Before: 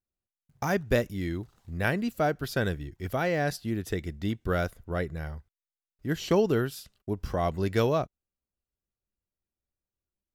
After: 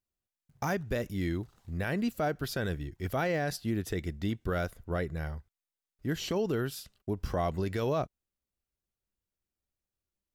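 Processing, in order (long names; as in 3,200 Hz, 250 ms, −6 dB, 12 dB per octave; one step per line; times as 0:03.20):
brickwall limiter −21.5 dBFS, peak gain reduction 9.5 dB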